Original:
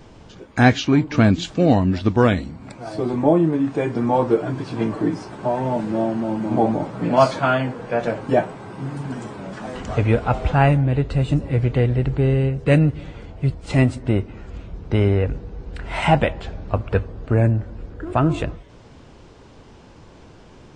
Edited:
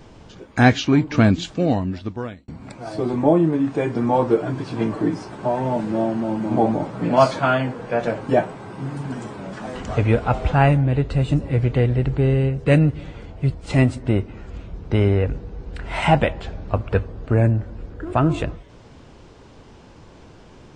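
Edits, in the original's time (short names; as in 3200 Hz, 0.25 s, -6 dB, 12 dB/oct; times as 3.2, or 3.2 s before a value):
1.24–2.48 fade out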